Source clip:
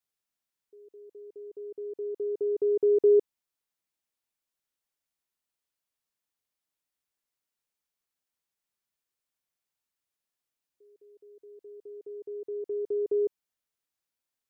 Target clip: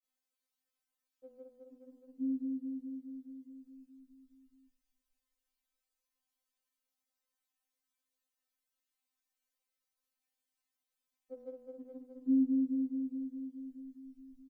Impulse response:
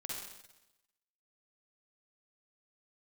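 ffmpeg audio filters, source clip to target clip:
-filter_complex "[0:a]areverse,asplit=7[link_01][link_02][link_03][link_04][link_05][link_06][link_07];[link_02]adelay=477,afreqshift=-73,volume=-8.5dB[link_08];[link_03]adelay=954,afreqshift=-146,volume=-14.3dB[link_09];[link_04]adelay=1431,afreqshift=-219,volume=-20.2dB[link_10];[link_05]adelay=1908,afreqshift=-292,volume=-26dB[link_11];[link_06]adelay=2385,afreqshift=-365,volume=-31.9dB[link_12];[link_07]adelay=2862,afreqshift=-438,volume=-37.7dB[link_13];[link_01][link_08][link_09][link_10][link_11][link_12][link_13]amix=inputs=7:normalize=0,afftfilt=real='re*3.46*eq(mod(b,12),0)':imag='im*3.46*eq(mod(b,12),0)':win_size=2048:overlap=0.75"

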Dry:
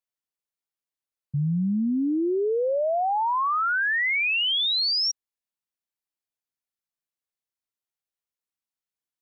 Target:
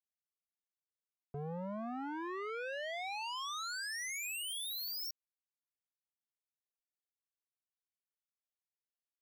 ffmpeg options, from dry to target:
ffmpeg -i in.wav -af "alimiter=level_in=2.5dB:limit=-24dB:level=0:latency=1,volume=-2.5dB,acrusher=bits=3:mix=0:aa=0.5,volume=7.5dB" out.wav

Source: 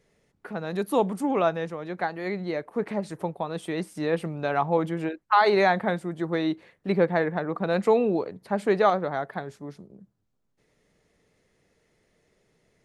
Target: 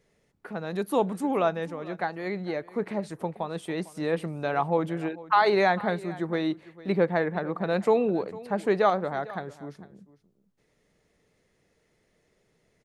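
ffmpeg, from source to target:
ffmpeg -i in.wav -af "aecho=1:1:452:0.112,volume=-1.5dB" out.wav

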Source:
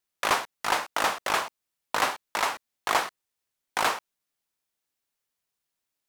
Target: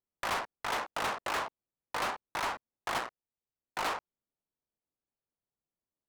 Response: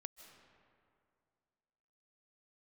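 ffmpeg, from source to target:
-filter_complex "[0:a]adynamicsmooth=sensitivity=4.5:basefreq=780,asettb=1/sr,asplit=3[link_01][link_02][link_03];[link_01]atrim=end=2.984[link_04];[link_02]atrim=start=2.98:end=3.78,asetpts=PTS-STARTPTS,afade=type=in:duration=0.004:curve=qsin,afade=type=out:start_time=0.796:duration=0.004:curve=qsin,tremolo=f=120:d=0.857[link_05];[link_03]atrim=start=3.776[link_06];[link_04][link_05]acrossfade=duration=0.004:curve1=hsin:curve2=qsin[link_07];[link_07][link_06]acrossfade=duration=0.004:curve1=qsin:curve2=hsin,asoftclip=type=tanh:threshold=-28.5dB"

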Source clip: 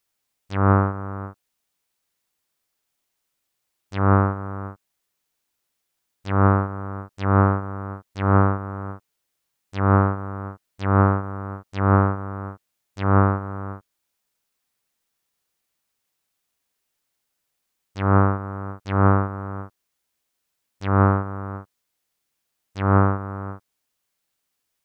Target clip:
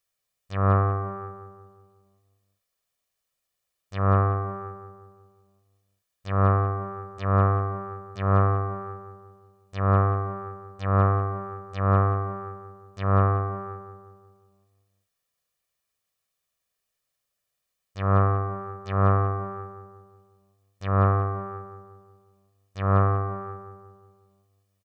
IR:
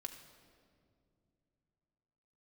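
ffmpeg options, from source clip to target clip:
-filter_complex "[0:a]aecho=1:1:1.7:0.5,asplit=2[link_01][link_02];[link_02]adelay=181,lowpass=frequency=1500:poles=1,volume=-6dB,asplit=2[link_03][link_04];[link_04]adelay=181,lowpass=frequency=1500:poles=1,volume=0.54,asplit=2[link_05][link_06];[link_06]adelay=181,lowpass=frequency=1500:poles=1,volume=0.54,asplit=2[link_07][link_08];[link_08]adelay=181,lowpass=frequency=1500:poles=1,volume=0.54,asplit=2[link_09][link_10];[link_10]adelay=181,lowpass=frequency=1500:poles=1,volume=0.54,asplit=2[link_11][link_12];[link_12]adelay=181,lowpass=frequency=1500:poles=1,volume=0.54,asplit=2[link_13][link_14];[link_14]adelay=181,lowpass=frequency=1500:poles=1,volume=0.54[link_15];[link_03][link_05][link_07][link_09][link_11][link_13][link_15]amix=inputs=7:normalize=0[link_16];[link_01][link_16]amix=inputs=2:normalize=0,volume=-5dB"

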